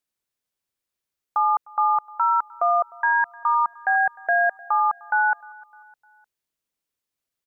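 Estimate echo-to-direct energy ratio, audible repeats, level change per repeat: −23.0 dB, 2, −6.5 dB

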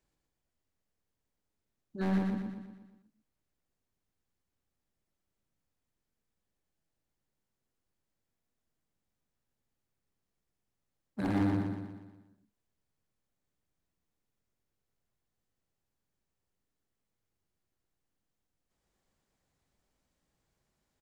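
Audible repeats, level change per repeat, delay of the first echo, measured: 6, −5.5 dB, 120 ms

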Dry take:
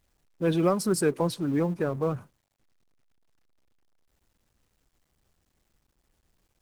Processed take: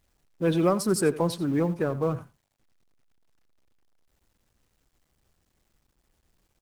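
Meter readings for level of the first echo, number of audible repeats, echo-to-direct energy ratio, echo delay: −17.0 dB, 1, −17.0 dB, 88 ms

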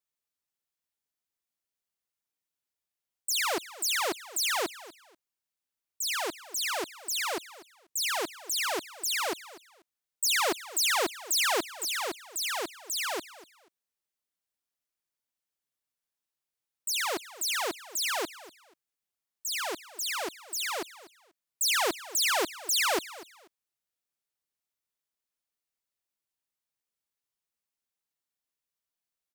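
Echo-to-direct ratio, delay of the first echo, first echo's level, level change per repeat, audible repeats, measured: −17.5 dB, 243 ms, −17.5 dB, −12.5 dB, 2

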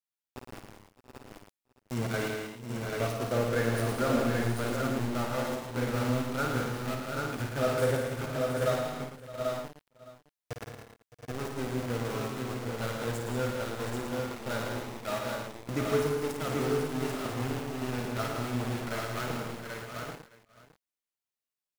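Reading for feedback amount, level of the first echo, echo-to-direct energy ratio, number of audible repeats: repeats not evenly spaced, −6.5 dB, 2.0 dB, 15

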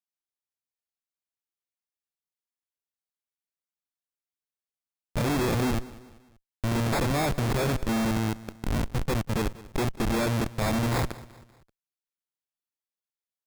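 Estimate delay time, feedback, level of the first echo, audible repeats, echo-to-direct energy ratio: 193 ms, 44%, −19.0 dB, 3, −18.0 dB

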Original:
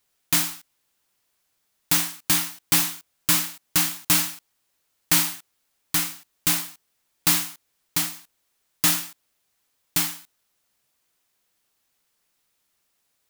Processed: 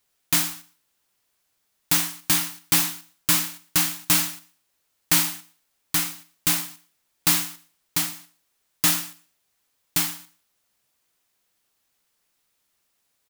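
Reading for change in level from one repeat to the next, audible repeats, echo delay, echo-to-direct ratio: −11.0 dB, 2, 117 ms, −22.0 dB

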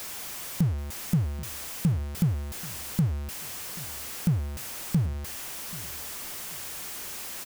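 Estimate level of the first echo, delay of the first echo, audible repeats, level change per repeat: −19.5 dB, 783 ms, 2, −10.5 dB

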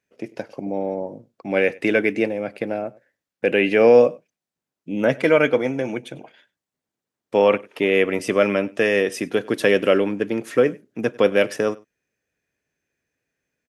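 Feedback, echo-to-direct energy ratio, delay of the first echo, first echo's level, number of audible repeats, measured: repeats not evenly spaced, −23.5 dB, 98 ms, −23.5 dB, 1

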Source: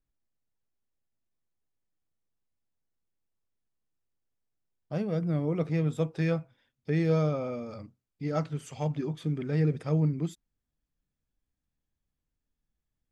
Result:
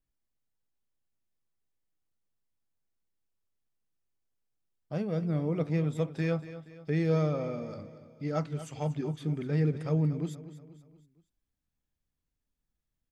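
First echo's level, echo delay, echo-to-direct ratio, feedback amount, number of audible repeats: −14.0 dB, 237 ms, −13.0 dB, 47%, 4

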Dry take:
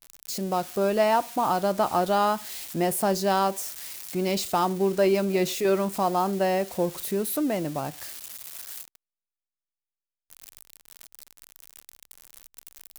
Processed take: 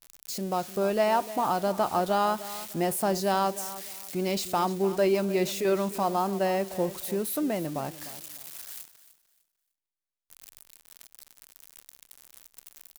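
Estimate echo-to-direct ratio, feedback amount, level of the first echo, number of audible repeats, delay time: −15.0 dB, 25%, −15.5 dB, 2, 301 ms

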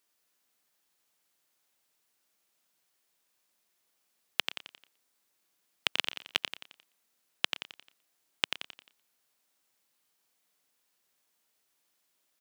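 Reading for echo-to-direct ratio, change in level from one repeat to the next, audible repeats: −5.0 dB, repeats not evenly spaced, 6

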